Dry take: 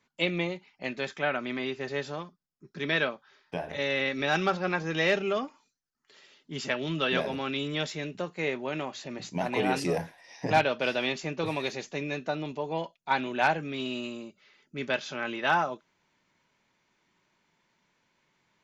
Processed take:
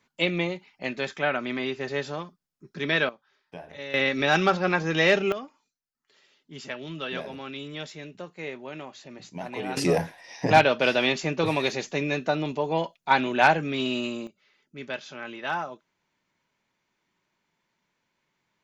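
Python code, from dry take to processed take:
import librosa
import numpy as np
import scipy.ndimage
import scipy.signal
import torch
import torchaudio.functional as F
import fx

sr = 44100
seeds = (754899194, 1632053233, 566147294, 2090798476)

y = fx.gain(x, sr, db=fx.steps((0.0, 3.0), (3.09, -7.5), (3.94, 5.0), (5.32, -5.5), (9.77, 6.0), (14.27, -4.5)))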